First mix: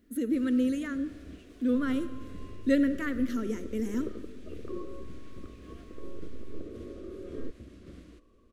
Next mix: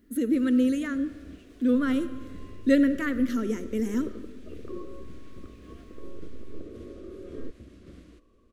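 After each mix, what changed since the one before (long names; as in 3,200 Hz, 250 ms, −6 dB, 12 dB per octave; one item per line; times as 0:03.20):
speech +4.0 dB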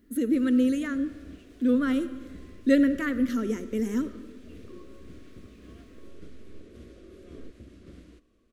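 second sound −9.0 dB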